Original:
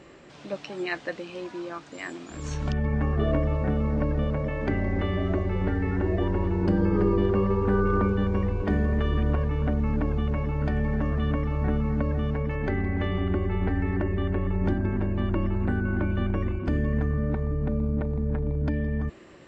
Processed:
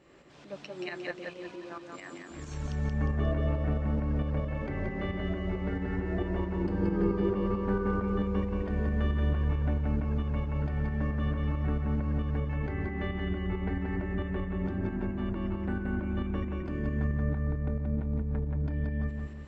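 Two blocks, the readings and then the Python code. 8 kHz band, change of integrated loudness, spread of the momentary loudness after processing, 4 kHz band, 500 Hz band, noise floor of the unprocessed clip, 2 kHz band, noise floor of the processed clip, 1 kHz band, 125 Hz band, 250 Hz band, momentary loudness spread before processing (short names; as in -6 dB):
n/a, -5.0 dB, 9 LU, -5.5 dB, -6.5 dB, -47 dBFS, -5.5 dB, -46 dBFS, -6.0 dB, -4.5 dB, -5.0 dB, 9 LU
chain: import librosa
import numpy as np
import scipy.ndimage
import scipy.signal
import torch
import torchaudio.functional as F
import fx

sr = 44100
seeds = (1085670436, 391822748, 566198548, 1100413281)

y = fx.tremolo_shape(x, sr, shape='saw_up', hz=4.5, depth_pct=60)
y = fx.echo_feedback(y, sr, ms=178, feedback_pct=44, wet_db=-3.5)
y = y * librosa.db_to_amplitude(-5.0)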